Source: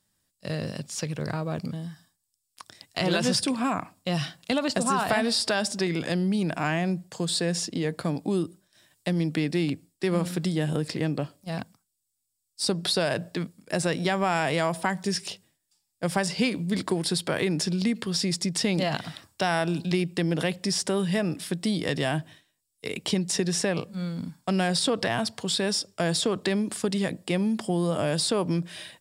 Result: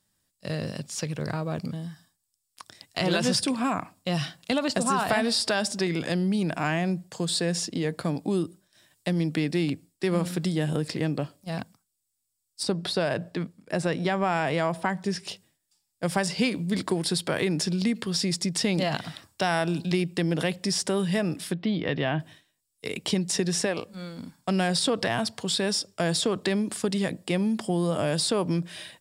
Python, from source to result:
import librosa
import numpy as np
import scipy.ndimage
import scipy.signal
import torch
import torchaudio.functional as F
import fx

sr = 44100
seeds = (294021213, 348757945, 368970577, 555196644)

y = fx.high_shelf(x, sr, hz=4200.0, db=-10.0, at=(12.63, 15.28))
y = fx.lowpass(y, sr, hz=3400.0, slope=24, at=(21.53, 22.2))
y = fx.peak_eq(y, sr, hz=150.0, db=-11.5, octaves=0.77, at=(23.66, 24.39))